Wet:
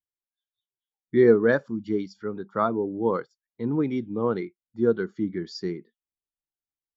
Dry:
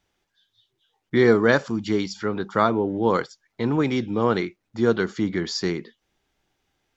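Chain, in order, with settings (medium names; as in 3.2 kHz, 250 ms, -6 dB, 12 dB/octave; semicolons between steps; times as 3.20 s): spectral contrast expander 1.5:1; trim -2 dB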